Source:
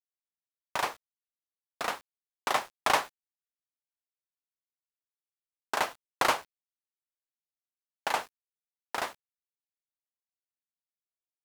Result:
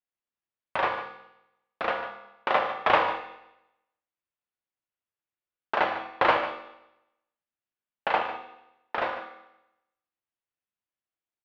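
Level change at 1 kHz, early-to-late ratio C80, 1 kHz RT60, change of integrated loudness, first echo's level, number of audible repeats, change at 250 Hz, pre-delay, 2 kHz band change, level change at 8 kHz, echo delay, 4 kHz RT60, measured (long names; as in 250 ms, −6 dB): +5.0 dB, 7.5 dB, 0.85 s, +4.0 dB, −12.0 dB, 1, +5.5 dB, 4 ms, +4.5 dB, below −20 dB, 148 ms, 0.80 s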